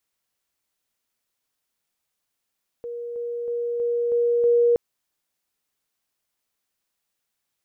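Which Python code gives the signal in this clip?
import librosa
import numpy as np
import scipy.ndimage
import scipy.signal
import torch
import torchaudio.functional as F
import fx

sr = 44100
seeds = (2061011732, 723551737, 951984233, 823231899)

y = fx.level_ladder(sr, hz=475.0, from_db=-29.5, step_db=3.0, steps=6, dwell_s=0.32, gap_s=0.0)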